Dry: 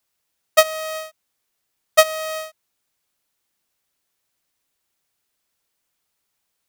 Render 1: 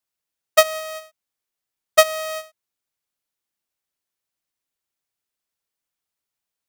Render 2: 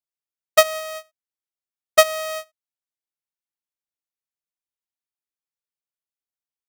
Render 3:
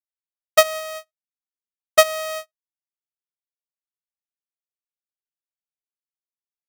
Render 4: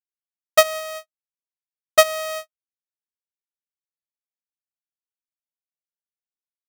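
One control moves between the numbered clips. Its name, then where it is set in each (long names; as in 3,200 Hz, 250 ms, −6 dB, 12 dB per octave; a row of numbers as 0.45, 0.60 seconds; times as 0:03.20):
noise gate, range: −10, −23, −40, −59 decibels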